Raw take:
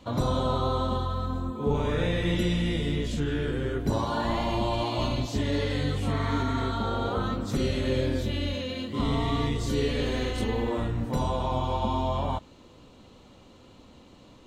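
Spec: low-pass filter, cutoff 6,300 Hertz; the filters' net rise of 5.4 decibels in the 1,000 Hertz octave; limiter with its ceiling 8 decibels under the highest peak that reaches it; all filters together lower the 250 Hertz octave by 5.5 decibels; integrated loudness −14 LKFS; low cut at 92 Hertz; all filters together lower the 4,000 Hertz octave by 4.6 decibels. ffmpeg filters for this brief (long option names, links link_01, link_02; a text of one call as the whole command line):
ffmpeg -i in.wav -af "highpass=92,lowpass=6300,equalizer=frequency=250:width_type=o:gain=-7.5,equalizer=frequency=1000:width_type=o:gain=7,equalizer=frequency=4000:width_type=o:gain=-6,volume=17dB,alimiter=limit=-4.5dB:level=0:latency=1" out.wav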